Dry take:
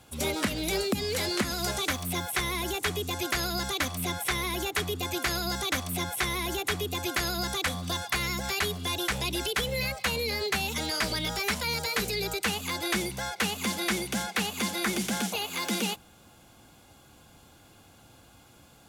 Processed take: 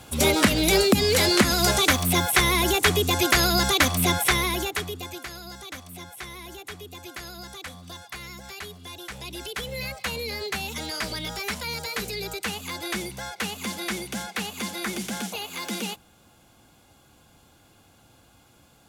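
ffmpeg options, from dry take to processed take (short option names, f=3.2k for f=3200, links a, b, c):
-af "volume=17.5dB,afade=t=out:st=4.13:d=0.68:silence=0.316228,afade=t=out:st=4.81:d=0.48:silence=0.354813,afade=t=in:st=9.05:d=0.91:silence=0.398107"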